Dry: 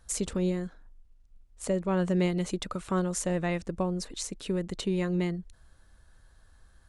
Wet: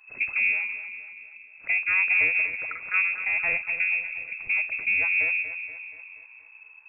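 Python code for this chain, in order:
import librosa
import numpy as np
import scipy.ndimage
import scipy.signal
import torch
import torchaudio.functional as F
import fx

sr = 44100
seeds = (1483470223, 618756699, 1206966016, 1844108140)

y = fx.octave_divider(x, sr, octaves=1, level_db=3.0)
y = fx.highpass(y, sr, hz=360.0, slope=12, at=(2.48, 2.94))
y = fx.peak_eq(y, sr, hz=1000.0, db=-7.5, octaves=1.2, at=(3.66, 4.38))
y = fx.echo_feedback(y, sr, ms=238, feedback_pct=54, wet_db=-10.5)
y = fx.freq_invert(y, sr, carrier_hz=2600)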